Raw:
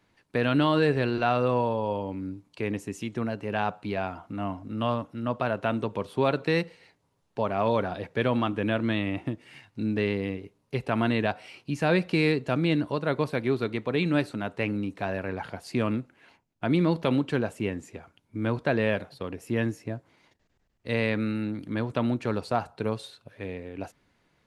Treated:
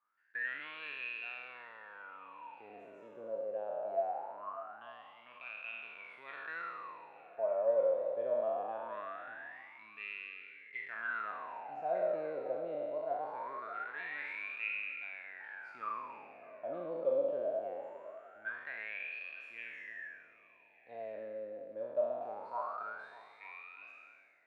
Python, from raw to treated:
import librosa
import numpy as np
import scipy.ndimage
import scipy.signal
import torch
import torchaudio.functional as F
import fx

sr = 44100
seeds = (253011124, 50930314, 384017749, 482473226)

y = fx.spec_trails(x, sr, decay_s=2.5)
y = fx.wah_lfo(y, sr, hz=0.22, low_hz=540.0, high_hz=2500.0, q=20.0)
y = fx.echo_stepped(y, sr, ms=299, hz=400.0, octaves=0.7, feedback_pct=70, wet_db=-11.0)
y = y * 10.0 ** (1.0 / 20.0)